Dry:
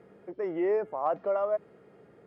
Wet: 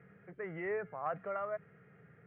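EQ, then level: air absorption 140 m; speaker cabinet 100–2200 Hz, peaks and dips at 220 Hz -8 dB, 340 Hz -9 dB, 580 Hz -5 dB, 910 Hz -5 dB; band shelf 530 Hz -12 dB 2.5 oct; +6.0 dB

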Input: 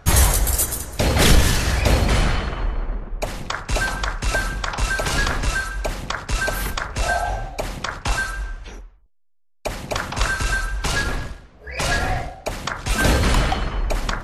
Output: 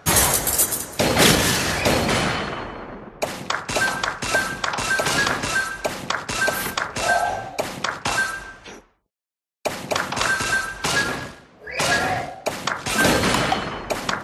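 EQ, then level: HPF 170 Hz 12 dB/oct; +2.5 dB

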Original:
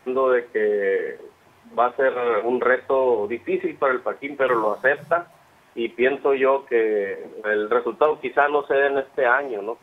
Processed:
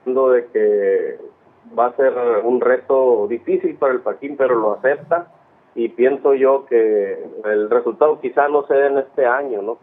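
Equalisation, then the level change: band-pass 360 Hz, Q 0.55; +6.0 dB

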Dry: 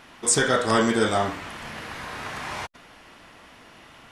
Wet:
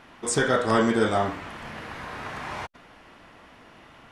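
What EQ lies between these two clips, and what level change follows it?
high shelf 3100 Hz -9 dB; 0.0 dB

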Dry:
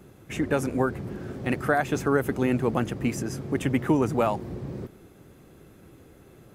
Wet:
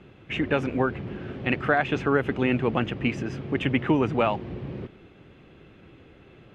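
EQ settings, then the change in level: synth low-pass 2900 Hz, resonance Q 2.7; 0.0 dB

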